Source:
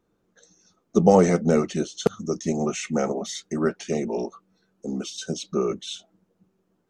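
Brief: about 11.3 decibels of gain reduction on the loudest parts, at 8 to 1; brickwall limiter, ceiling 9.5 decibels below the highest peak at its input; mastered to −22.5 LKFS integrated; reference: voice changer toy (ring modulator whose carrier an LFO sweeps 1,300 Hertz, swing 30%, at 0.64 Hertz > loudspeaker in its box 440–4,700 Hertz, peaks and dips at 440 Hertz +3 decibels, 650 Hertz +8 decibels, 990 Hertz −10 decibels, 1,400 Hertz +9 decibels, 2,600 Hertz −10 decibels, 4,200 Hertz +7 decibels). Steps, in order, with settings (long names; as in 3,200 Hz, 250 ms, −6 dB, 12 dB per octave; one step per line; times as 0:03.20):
downward compressor 8 to 1, threshold −22 dBFS
brickwall limiter −20.5 dBFS
ring modulator whose carrier an LFO sweeps 1,300 Hz, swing 30%, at 0.64 Hz
loudspeaker in its box 440–4,700 Hz, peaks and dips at 440 Hz +3 dB, 650 Hz +8 dB, 990 Hz −10 dB, 1,400 Hz +9 dB, 2,600 Hz −10 dB, 4,200 Hz +7 dB
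level +8 dB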